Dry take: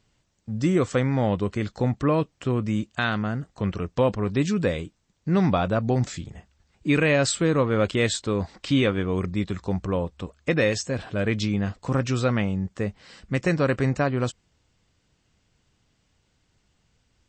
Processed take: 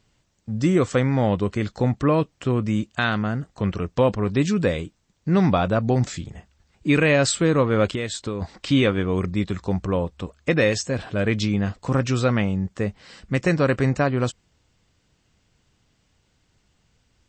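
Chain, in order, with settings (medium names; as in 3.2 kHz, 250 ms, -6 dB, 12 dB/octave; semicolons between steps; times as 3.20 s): 7.90–8.42 s: compression 5:1, threshold -27 dBFS, peak gain reduction 9 dB; trim +2.5 dB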